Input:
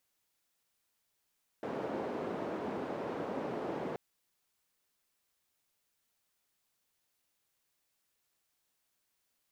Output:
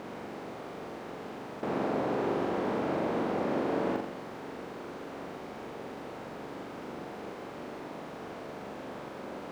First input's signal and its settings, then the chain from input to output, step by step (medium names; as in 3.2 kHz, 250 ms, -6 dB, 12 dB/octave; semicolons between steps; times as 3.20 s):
noise band 250–490 Hz, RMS -38 dBFS 2.33 s
spectral levelling over time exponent 0.2; on a send: flutter echo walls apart 7.3 m, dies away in 0.62 s